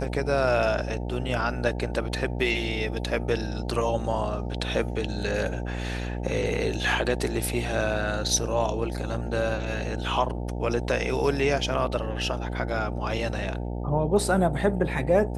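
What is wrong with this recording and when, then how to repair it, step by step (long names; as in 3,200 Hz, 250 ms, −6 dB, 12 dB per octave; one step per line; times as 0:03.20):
mains buzz 60 Hz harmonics 15 −31 dBFS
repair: hum removal 60 Hz, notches 15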